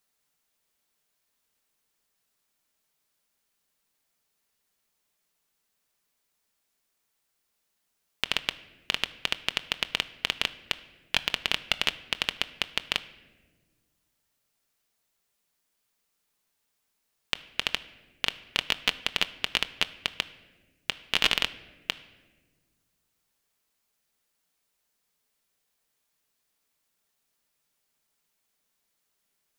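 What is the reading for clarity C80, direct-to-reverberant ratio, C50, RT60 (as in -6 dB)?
18.0 dB, 10.0 dB, 16.5 dB, 1.4 s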